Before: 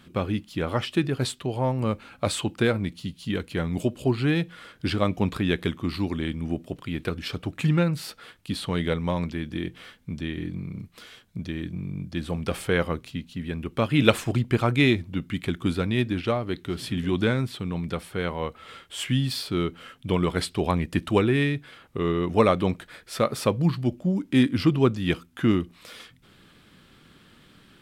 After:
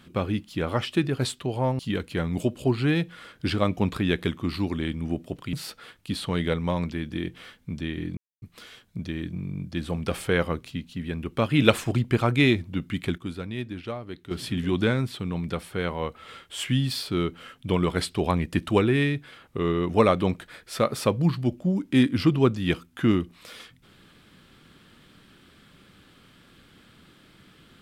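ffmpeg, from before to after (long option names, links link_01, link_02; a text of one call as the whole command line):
ffmpeg -i in.wav -filter_complex "[0:a]asplit=7[link_01][link_02][link_03][link_04][link_05][link_06][link_07];[link_01]atrim=end=1.792[link_08];[link_02]atrim=start=3.188:end=6.932[link_09];[link_03]atrim=start=7.928:end=10.57,asetpts=PTS-STARTPTS,afade=type=out:start_time=2.638:duration=0.004:curve=hsin[link_10];[link_04]atrim=start=10.57:end=10.82,asetpts=PTS-STARTPTS,volume=0[link_11];[link_05]atrim=start=10.82:end=15.582,asetpts=PTS-STARTPTS,afade=type=in:duration=0.004:curve=hsin[link_12];[link_06]atrim=start=15.578:end=16.712,asetpts=PTS-STARTPTS,volume=-8.5dB[link_13];[link_07]atrim=start=16.708[link_14];[link_08][link_09]acrossfade=duration=0.004:curve1=hsin:curve2=hsin[link_15];[link_10][link_11][link_12]concat=n=3:v=0:a=1[link_16];[link_15][link_16]acrossfade=duration=0.004:curve1=hsin:curve2=hsin[link_17];[link_17][link_13]acrossfade=duration=0.004:curve1=hsin:curve2=hsin[link_18];[link_18][link_14]acrossfade=duration=0.004:curve1=hsin:curve2=hsin" out.wav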